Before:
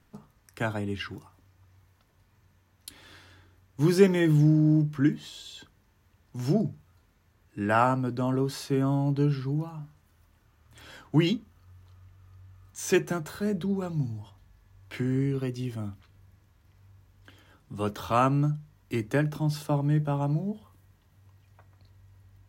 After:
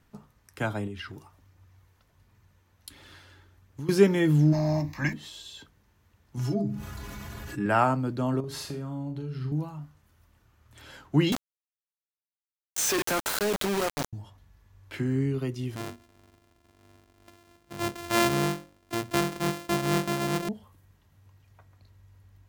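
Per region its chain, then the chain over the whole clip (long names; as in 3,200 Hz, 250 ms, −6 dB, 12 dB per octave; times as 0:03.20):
0:00.87–0:03.89: downward compressor 4 to 1, threshold −36 dBFS + phase shifter 1.4 Hz, delay 2.6 ms, feedback 24%
0:04.52–0:05.12: ceiling on every frequency bin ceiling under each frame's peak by 22 dB + phaser with its sweep stopped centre 2,100 Hz, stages 8
0:06.37–0:07.66: notch filter 510 Hz + stiff-string resonator 61 Hz, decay 0.26 s, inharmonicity 0.03 + envelope flattener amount 70%
0:08.40–0:09.52: parametric band 88 Hz +7.5 dB 1.6 octaves + downward compressor, threshold −32 dBFS + flutter between parallel walls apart 6.7 metres, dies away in 0.33 s
0:11.32–0:14.13: high-pass filter 450 Hz + log-companded quantiser 2 bits + envelope flattener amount 50%
0:15.76–0:20.49: samples sorted by size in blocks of 128 samples + low-shelf EQ 120 Hz −7 dB + mains-hum notches 60/120/180/240/300/360/420/480/540 Hz
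whole clip: no processing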